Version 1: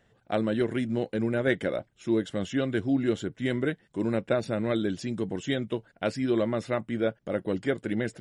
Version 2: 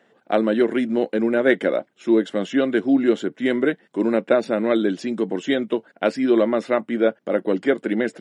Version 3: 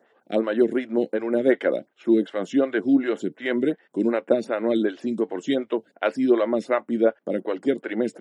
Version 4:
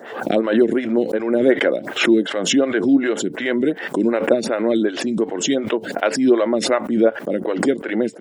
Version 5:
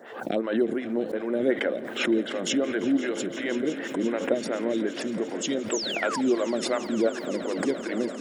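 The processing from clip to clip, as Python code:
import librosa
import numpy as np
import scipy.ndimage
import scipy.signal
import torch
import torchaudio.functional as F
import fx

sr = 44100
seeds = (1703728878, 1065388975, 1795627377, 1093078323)

y1 = scipy.signal.sosfilt(scipy.signal.butter(4, 220.0, 'highpass', fs=sr, output='sos'), x)
y1 = fx.high_shelf(y1, sr, hz=4200.0, db=-10.0)
y1 = y1 * 10.0 ** (9.0 / 20.0)
y2 = fx.stagger_phaser(y1, sr, hz=2.7)
y3 = fx.pre_swell(y2, sr, db_per_s=71.0)
y3 = y3 * 10.0 ** (3.5 / 20.0)
y4 = fx.spec_paint(y3, sr, seeds[0], shape='fall', start_s=5.71, length_s=0.5, low_hz=790.0, high_hz=8100.0, level_db=-23.0)
y4 = fx.echo_swell(y4, sr, ms=172, loudest=5, wet_db=-17.5)
y4 = y4 * 10.0 ** (-9.0 / 20.0)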